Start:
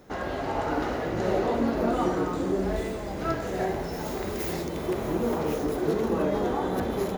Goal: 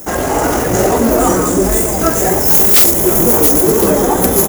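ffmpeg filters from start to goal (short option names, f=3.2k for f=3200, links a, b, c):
-filter_complex "[0:a]flanger=delay=15:depth=4.6:speed=1.3,aexciter=amount=9.8:drive=6.7:freq=6.1k,atempo=1.6,aeval=exprs='0.794*sin(PI/2*5.62*val(0)/0.794)':c=same,asplit=2[a][b];[b]aecho=0:1:1058:0.168[c];[a][c]amix=inputs=2:normalize=0,volume=-1dB"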